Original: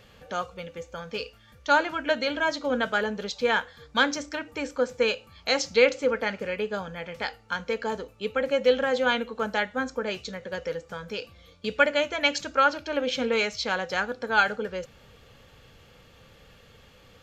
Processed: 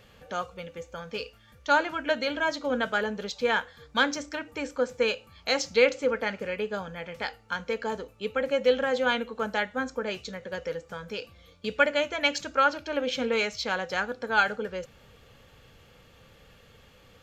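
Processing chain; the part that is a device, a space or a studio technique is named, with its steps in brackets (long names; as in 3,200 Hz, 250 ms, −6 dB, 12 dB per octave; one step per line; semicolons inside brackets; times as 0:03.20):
exciter from parts (in parallel at −13 dB: high-pass filter 3,800 Hz 12 dB per octave + soft clipping −32.5 dBFS, distortion −9 dB + high-pass filter 4,100 Hz)
on the sum: level −1.5 dB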